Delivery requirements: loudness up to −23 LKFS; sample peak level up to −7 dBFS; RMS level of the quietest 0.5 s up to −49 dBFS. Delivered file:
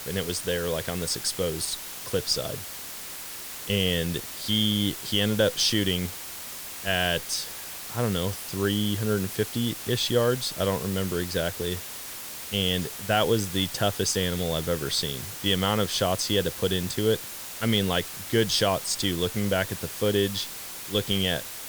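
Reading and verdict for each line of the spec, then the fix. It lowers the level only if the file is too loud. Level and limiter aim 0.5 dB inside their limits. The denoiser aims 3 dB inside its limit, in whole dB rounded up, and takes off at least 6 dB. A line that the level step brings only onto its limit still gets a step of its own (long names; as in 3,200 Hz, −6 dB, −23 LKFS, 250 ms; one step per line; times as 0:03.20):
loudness −26.5 LKFS: in spec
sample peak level −9.0 dBFS: in spec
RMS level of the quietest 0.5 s −38 dBFS: out of spec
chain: broadband denoise 14 dB, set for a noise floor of −38 dBFS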